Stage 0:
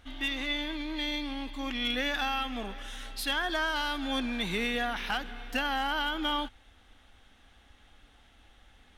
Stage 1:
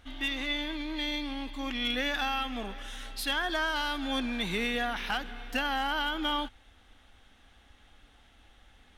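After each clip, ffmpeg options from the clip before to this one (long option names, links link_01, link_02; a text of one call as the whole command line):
ffmpeg -i in.wav -af anull out.wav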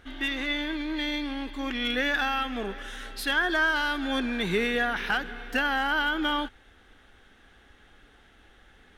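ffmpeg -i in.wav -af "equalizer=frequency=160:width_type=o:width=0.67:gain=6,equalizer=frequency=400:width_type=o:width=0.67:gain=10,equalizer=frequency=1600:width_type=o:width=0.67:gain=8" out.wav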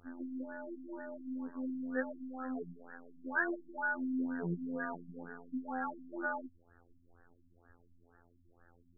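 ffmpeg -i in.wav -af "afftfilt=real='hypot(re,im)*cos(PI*b)':imag='0':win_size=2048:overlap=0.75,afftfilt=real='re*lt(b*sr/1024,300*pow(1900/300,0.5+0.5*sin(2*PI*2.1*pts/sr)))':imag='im*lt(b*sr/1024,300*pow(1900/300,0.5+0.5*sin(2*PI*2.1*pts/sr)))':win_size=1024:overlap=0.75,volume=-3dB" out.wav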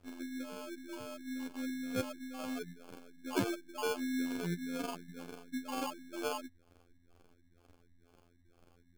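ffmpeg -i in.wav -af "acrusher=samples=23:mix=1:aa=0.000001" out.wav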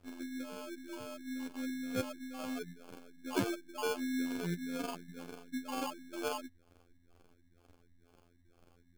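ffmpeg -i in.wav -ar 44100 -c:a aac -b:a 128k out.aac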